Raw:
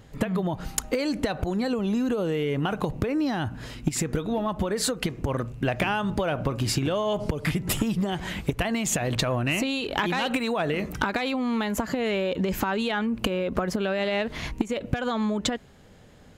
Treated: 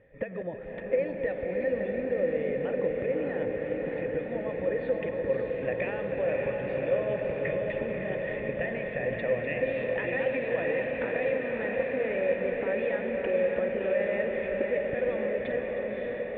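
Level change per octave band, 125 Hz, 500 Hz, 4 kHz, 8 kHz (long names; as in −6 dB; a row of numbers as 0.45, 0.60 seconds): −11.5 dB, +2.5 dB, below −15 dB, below −40 dB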